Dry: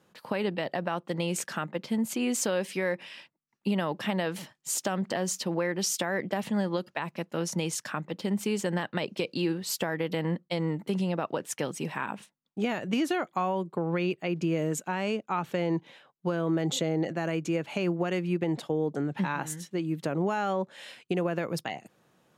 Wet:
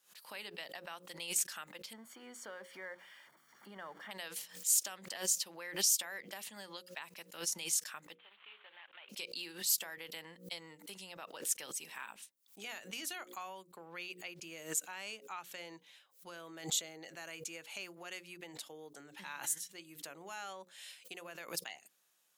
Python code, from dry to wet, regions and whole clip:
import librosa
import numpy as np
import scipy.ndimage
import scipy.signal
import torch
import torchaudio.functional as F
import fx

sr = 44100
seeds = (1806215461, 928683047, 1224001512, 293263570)

y = fx.chain(x, sr, fx.zero_step(step_db=-38.0),
    fx.savgol(points=41), at=(1.93, 4.11))
y = fx.chain(y, sr, fx.cvsd(bps=16000),
    fx.highpass(hz=1000.0, slope=12),
    fx.peak_eq(hz=1900.0, db=-7.5, octaves=1.1), at=(8.15, 9.09))
y = np.diff(y, prepend=0.0)
y = fx.hum_notches(y, sr, base_hz=60, count=9)
y = fx.pre_swell(y, sr, db_per_s=150.0)
y = F.gain(torch.from_numpy(y), 1.5).numpy()